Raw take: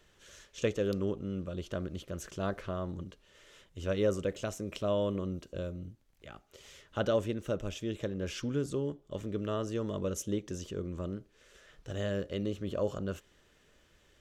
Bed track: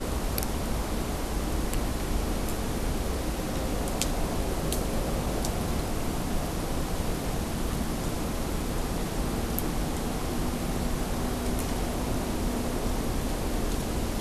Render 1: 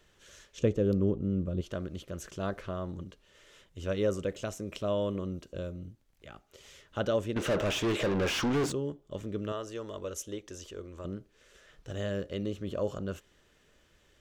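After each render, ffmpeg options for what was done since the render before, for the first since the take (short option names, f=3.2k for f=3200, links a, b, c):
-filter_complex "[0:a]asettb=1/sr,asplit=3[a][b][c];[a]atrim=end=0.594[d];[b]atrim=start=0.59:end=1.61,asetpts=PTS-STARTPTS,afade=t=in:d=0.004:c=qsin,afade=t=out:st=1.016:d=0.004:c=qsin,tiltshelf=f=650:g=8[e];[c]atrim=start=1.606[f];[d][e]acrossfade=d=0.004:c1=hsin:c2=qsin[g];[g][f]acrossfade=d=0.004:c1=qsin:c2=hsin,asettb=1/sr,asplit=3[h][i][j];[h]atrim=end=7.364[k];[i]atrim=start=7.36:end=8.72,asetpts=PTS-STARTPTS,afade=t=in:d=0.004:c=qsin,afade=t=out:st=1.356:d=0.004:c=qsin,asplit=2[l][m];[m]highpass=f=720:p=1,volume=32dB,asoftclip=type=tanh:threshold=-21dB[n];[l][n]amix=inputs=2:normalize=0,lowpass=f=2.6k:p=1,volume=-6dB[o];[j]atrim=start=8.716[p];[k][o]acrossfade=d=0.004:c1=hsin:c2=qsin[q];[q][p]acrossfade=d=0.004:c1=qsin:c2=hsin,asettb=1/sr,asplit=3[r][s][t];[r]atrim=end=9.524[u];[s]atrim=start=9.52:end=11.05,asetpts=PTS-STARTPTS,afade=t=in:d=0.004:c=qsin,afade=t=out:st=1.526:d=0.004:c=qsin,equalizer=f=160:w=0.88:g=-15[v];[t]atrim=start=11.046[w];[u][v]acrossfade=d=0.004:c1=hsin:c2=qsin[x];[x][w]acrossfade=d=0.004:c1=qsin:c2=hsin"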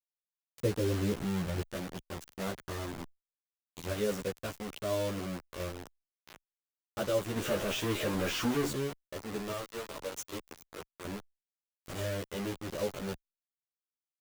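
-filter_complex "[0:a]acrusher=bits=5:mix=0:aa=0.000001,asplit=2[a][b];[b]adelay=11.9,afreqshift=-1.7[c];[a][c]amix=inputs=2:normalize=1"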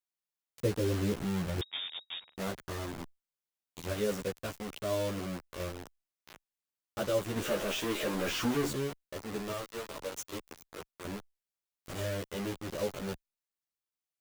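-filter_complex "[0:a]asettb=1/sr,asplit=3[a][b][c];[a]atrim=end=1.614[d];[b]atrim=start=1.61:end=2.36,asetpts=PTS-STARTPTS,afade=t=in:d=0.004:c=qsin,afade=t=out:st=0.746:d=0.004:c=qsin,lowpass=f=3.2k:t=q:w=0.5098,lowpass=f=3.2k:t=q:w=0.6013,lowpass=f=3.2k:t=q:w=0.9,lowpass=f=3.2k:t=q:w=2.563,afreqshift=-3800[e];[c]atrim=start=2.356[f];[d][e]acrossfade=d=0.004:c1=hsin:c2=qsin[g];[g][f]acrossfade=d=0.004:c1=qsin:c2=hsin,asettb=1/sr,asplit=3[h][i][j];[h]atrim=end=7.434[k];[i]atrim=start=7.43:end=8.28,asetpts=PTS-STARTPTS,afade=t=in:d=0.004:c=qsin,afade=t=out:st=0.846:d=0.004:c=qsin,equalizer=f=100:t=o:w=0.77:g=-12.5[l];[j]atrim=start=8.276[m];[k][l]acrossfade=d=0.004:c1=hsin:c2=qsin[n];[n][m]acrossfade=d=0.004:c1=qsin:c2=hsin"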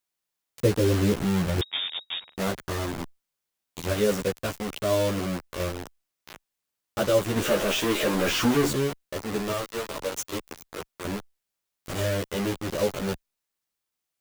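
-af "volume=8.5dB"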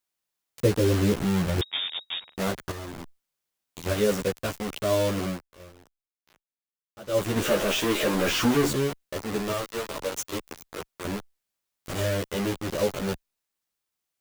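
-filter_complex "[0:a]asettb=1/sr,asplit=3[a][b][c];[a]atrim=end=2.714[d];[b]atrim=start=2.71:end=3.86,asetpts=PTS-STARTPTS,afade=t=in:d=0.004:c=qsin,afade=t=out:st=1.146:d=0.004:c=qsin,acompressor=threshold=-34dB:ratio=5:attack=3.2:release=140:knee=1:detection=peak[e];[c]atrim=start=3.856[f];[d][e]acrossfade=d=0.004:c1=hsin:c2=qsin[g];[g][f]acrossfade=d=0.004:c1=qsin:c2=hsin,asplit=3[h][i][j];[h]atrim=end=5.44,asetpts=PTS-STARTPTS,afade=t=out:st=5.29:d=0.15:silence=0.125893[k];[i]atrim=start=5.44:end=7.06,asetpts=PTS-STARTPTS,volume=-18dB[l];[j]atrim=start=7.06,asetpts=PTS-STARTPTS,afade=t=in:d=0.15:silence=0.125893[m];[k][l][m]concat=n=3:v=0:a=1"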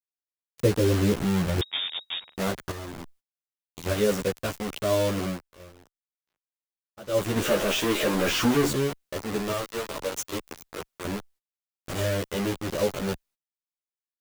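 -af "agate=range=-22dB:threshold=-55dB:ratio=16:detection=peak"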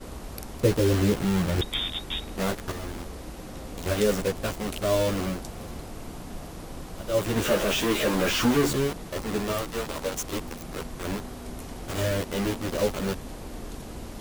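-filter_complex "[1:a]volume=-9dB[a];[0:a][a]amix=inputs=2:normalize=0"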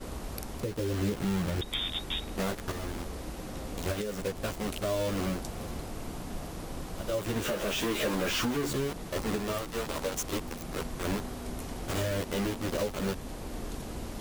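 -af "acompressor=threshold=-24dB:ratio=6,alimiter=limit=-20.5dB:level=0:latency=1:release=484"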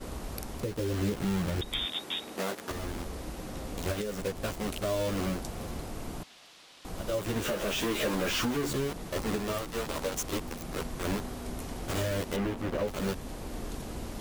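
-filter_complex "[0:a]asettb=1/sr,asplit=3[a][b][c];[a]atrim=end=1.854[d];[b]atrim=start=1.85:end=2.71,asetpts=PTS-STARTPTS,afade=t=in:d=0.004:c=qsin,afade=t=out:st=0.856:d=0.004:c=qsin,highpass=250[e];[c]atrim=start=2.706[f];[d][e]acrossfade=d=0.004:c1=hsin:c2=qsin[g];[g][f]acrossfade=d=0.004:c1=qsin:c2=hsin,asettb=1/sr,asplit=3[h][i][j];[h]atrim=end=6.234[k];[i]atrim=start=6.23:end=6.85,asetpts=PTS-STARTPTS,afade=t=in:d=0.004:c=qsin,afade=t=out:st=0.616:d=0.004:c=qsin,bandpass=f=3.5k:t=q:w=1.4[l];[j]atrim=start=6.846[m];[k][l]acrossfade=d=0.004:c1=hsin:c2=qsin[n];[n][m]acrossfade=d=0.004:c1=qsin:c2=hsin,asettb=1/sr,asplit=3[o][p][q];[o]atrim=end=12.364[r];[p]atrim=start=12.36:end=12.88,asetpts=PTS-STARTPTS,afade=t=in:d=0.004:c=qsin,afade=t=out:st=0.516:d=0.004:c=qsin,acrossover=split=2800[s][t];[t]acompressor=threshold=-52dB:ratio=4:attack=1:release=60[u];[s][u]amix=inputs=2:normalize=0[v];[q]atrim=start=12.876[w];[r][v]acrossfade=d=0.004:c1=hsin:c2=qsin[x];[x][w]acrossfade=d=0.004:c1=qsin:c2=hsin"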